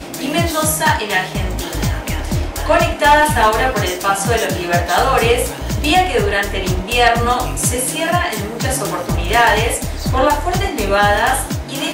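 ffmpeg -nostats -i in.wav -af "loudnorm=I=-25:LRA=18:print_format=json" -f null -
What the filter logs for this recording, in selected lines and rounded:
"input_i" : "-15.9",
"input_tp" : "-3.1",
"input_lra" : "1.4",
"input_thresh" : "-25.9",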